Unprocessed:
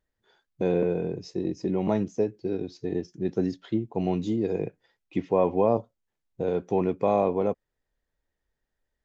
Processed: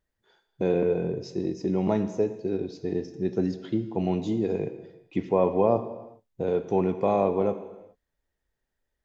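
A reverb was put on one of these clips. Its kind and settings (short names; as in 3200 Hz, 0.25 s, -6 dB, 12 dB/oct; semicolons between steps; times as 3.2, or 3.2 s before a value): non-linear reverb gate 0.44 s falling, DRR 9.5 dB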